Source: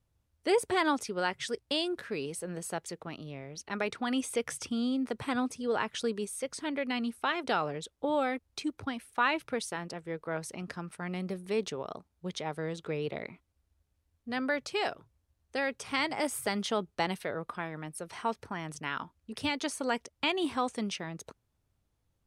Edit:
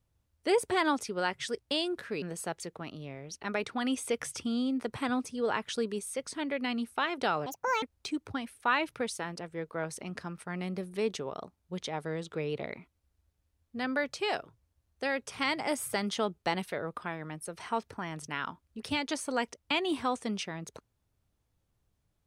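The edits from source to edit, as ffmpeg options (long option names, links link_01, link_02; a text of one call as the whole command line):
ffmpeg -i in.wav -filter_complex "[0:a]asplit=4[link_01][link_02][link_03][link_04];[link_01]atrim=end=2.222[link_05];[link_02]atrim=start=2.478:end=7.724[link_06];[link_03]atrim=start=7.72:end=8.35,asetpts=PTS-STARTPTS,asetrate=76293,aresample=44100[link_07];[link_04]atrim=start=8.346[link_08];[link_05][link_06]acrossfade=duration=0.004:curve1=hsin:curve2=hsin[link_09];[link_09][link_07]acrossfade=duration=0.004:curve1=hsin:curve2=hsin[link_10];[link_10][link_08]acrossfade=duration=0.004:curve1=hsin:curve2=hsin" out.wav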